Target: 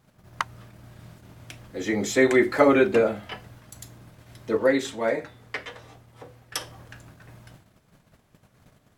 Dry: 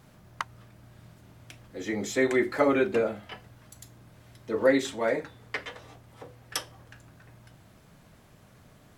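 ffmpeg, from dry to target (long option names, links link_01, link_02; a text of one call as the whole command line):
ffmpeg -i in.wav -filter_complex "[0:a]agate=range=-13dB:threshold=-53dB:ratio=16:detection=peak,asettb=1/sr,asplit=3[link_01][link_02][link_03];[link_01]atrim=end=4.574[link_04];[link_02]atrim=start=4.57:end=6.61,asetpts=PTS-STARTPTS,afade=type=in:duration=0.004:curve=qsin,afade=type=out:start_time=2.036:duration=0.004:curve=qsin,flanger=delay=7.8:depth=1.1:regen=88:speed=1.1:shape=sinusoidal[link_05];[link_03]atrim=start=6.606[link_06];[link_04][link_05]acrossfade=duration=0.004:curve1=hsin:curve2=qsin[link_07];[link_07][link_06]acrossfade=duration=0.004:curve1=qsin:curve2=hsin,volume=5.5dB" out.wav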